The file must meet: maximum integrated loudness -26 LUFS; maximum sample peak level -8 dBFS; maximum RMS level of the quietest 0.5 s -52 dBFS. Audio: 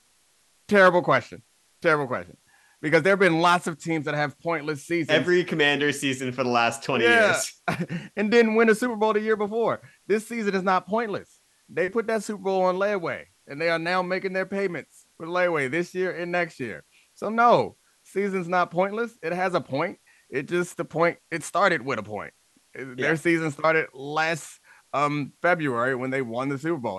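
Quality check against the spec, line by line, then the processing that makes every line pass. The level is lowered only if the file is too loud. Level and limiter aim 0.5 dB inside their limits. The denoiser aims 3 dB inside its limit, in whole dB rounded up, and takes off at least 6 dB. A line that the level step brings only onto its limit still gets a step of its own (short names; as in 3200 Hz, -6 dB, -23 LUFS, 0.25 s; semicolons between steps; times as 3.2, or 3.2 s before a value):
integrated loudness -24.0 LUFS: fail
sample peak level -5.5 dBFS: fail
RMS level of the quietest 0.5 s -63 dBFS: OK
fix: gain -2.5 dB; limiter -8.5 dBFS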